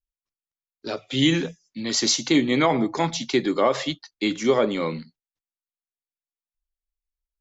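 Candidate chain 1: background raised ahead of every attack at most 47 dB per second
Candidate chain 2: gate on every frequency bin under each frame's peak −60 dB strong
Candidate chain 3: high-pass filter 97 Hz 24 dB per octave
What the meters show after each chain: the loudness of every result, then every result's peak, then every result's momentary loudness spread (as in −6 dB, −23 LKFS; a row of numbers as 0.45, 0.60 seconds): −21.5, −22.5, −22.5 LKFS; −5.0, −8.0, −7.5 dBFS; 12, 13, 13 LU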